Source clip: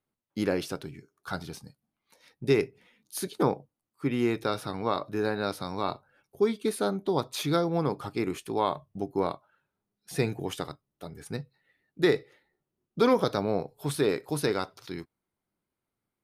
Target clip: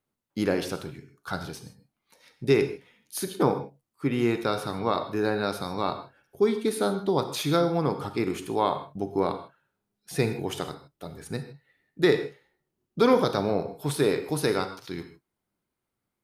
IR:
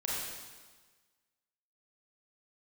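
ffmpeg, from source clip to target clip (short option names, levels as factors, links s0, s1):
-filter_complex "[0:a]asplit=2[s0][s1];[1:a]atrim=start_sample=2205,afade=t=out:st=0.2:d=0.01,atrim=end_sample=9261,asetrate=41895,aresample=44100[s2];[s1][s2]afir=irnorm=-1:irlink=0,volume=0.316[s3];[s0][s3]amix=inputs=2:normalize=0"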